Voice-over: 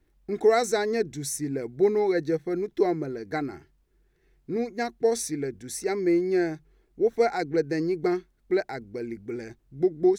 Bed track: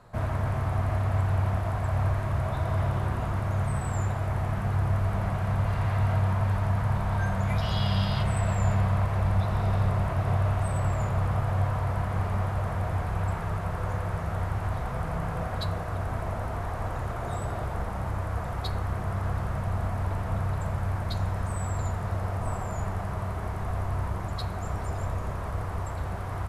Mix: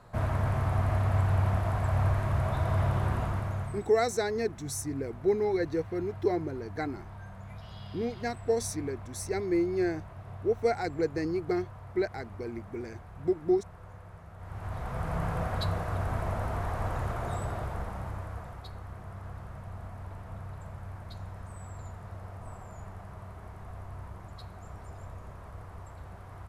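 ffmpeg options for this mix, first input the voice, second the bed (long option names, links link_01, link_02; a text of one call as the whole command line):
ffmpeg -i stem1.wav -i stem2.wav -filter_complex "[0:a]adelay=3450,volume=-4.5dB[link_01];[1:a]volume=17dB,afade=type=out:start_time=3.16:duration=0.74:silence=0.133352,afade=type=in:start_time=14.38:duration=0.84:silence=0.133352,afade=type=out:start_time=17.05:duration=1.6:silence=0.237137[link_02];[link_01][link_02]amix=inputs=2:normalize=0" out.wav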